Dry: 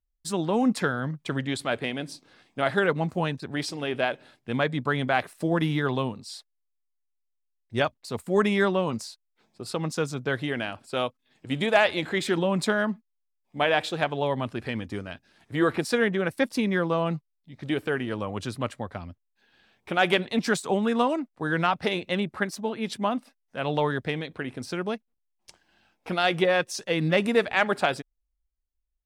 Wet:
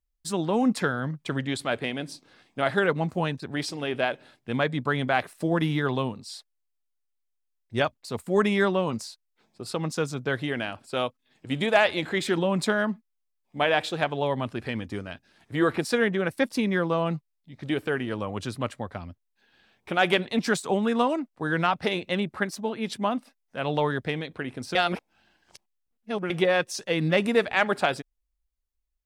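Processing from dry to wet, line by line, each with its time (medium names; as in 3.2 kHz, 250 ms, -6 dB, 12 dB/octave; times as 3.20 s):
24.75–26.30 s: reverse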